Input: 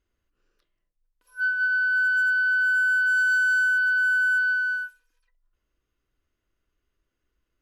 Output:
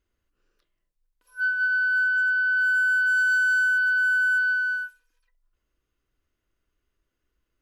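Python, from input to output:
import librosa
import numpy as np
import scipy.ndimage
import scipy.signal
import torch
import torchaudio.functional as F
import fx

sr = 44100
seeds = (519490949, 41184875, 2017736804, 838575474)

y = fx.high_shelf(x, sr, hz=6000.0, db=-11.0, at=(2.04, 2.57))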